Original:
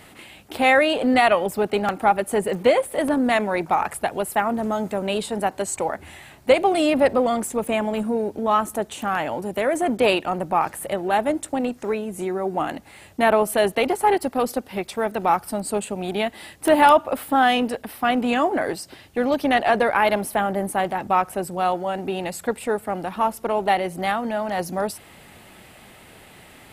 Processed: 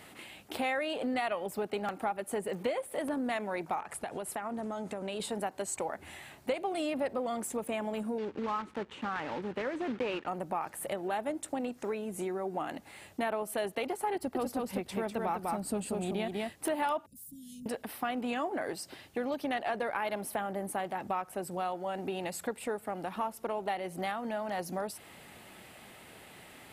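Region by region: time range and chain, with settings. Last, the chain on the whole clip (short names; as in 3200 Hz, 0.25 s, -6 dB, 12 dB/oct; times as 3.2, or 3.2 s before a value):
3.8–5.2 LPF 11000 Hz 24 dB/oct + compressor 5:1, threshold -27 dBFS
8.18–10.27 block floating point 3-bit + LPF 2400 Hz + bell 670 Hz -11 dB 0.29 oct
14.15–16.52 low shelf 250 Hz +10.5 dB + echo 0.198 s -3.5 dB
17.06–17.66 elliptic band-stop 170–6300 Hz, stop band 80 dB + compressor 1.5:1, threshold -44 dBFS
whole clip: low shelf 76 Hz -10.5 dB; compressor 3:1, threshold -28 dBFS; gain -5 dB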